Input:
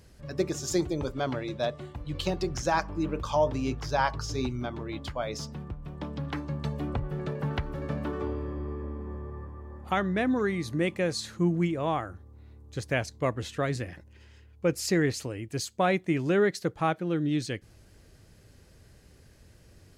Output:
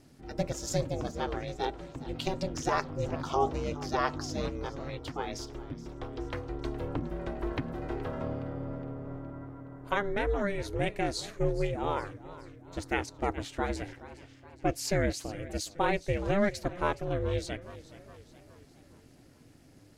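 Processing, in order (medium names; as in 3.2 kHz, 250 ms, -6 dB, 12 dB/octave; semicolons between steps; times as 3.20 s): ring modulator 200 Hz; modulated delay 419 ms, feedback 52%, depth 137 cents, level -17 dB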